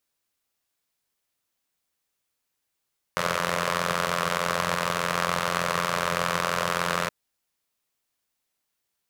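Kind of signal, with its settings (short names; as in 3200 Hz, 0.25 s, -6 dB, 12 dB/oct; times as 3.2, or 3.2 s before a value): four-cylinder engine model, steady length 3.92 s, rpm 2600, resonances 170/560/1100 Hz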